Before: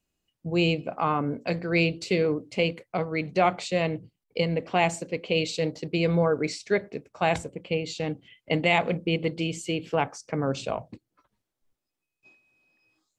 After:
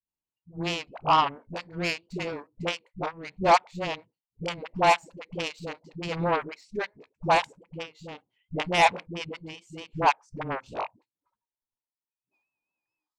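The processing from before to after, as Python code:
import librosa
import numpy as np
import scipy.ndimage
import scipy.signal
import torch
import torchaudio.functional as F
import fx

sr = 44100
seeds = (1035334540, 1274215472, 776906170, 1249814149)

y = fx.peak_eq(x, sr, hz=930.0, db=15.0, octaves=0.38)
y = fx.cheby_harmonics(y, sr, harmonics=(5, 7), levels_db=(-27, -16), full_scale_db=-3.5)
y = fx.dispersion(y, sr, late='highs', ms=88.0, hz=350.0)
y = fx.vibrato(y, sr, rate_hz=4.5, depth_cents=59.0)
y = F.gain(torch.from_numpy(y), -1.5).numpy()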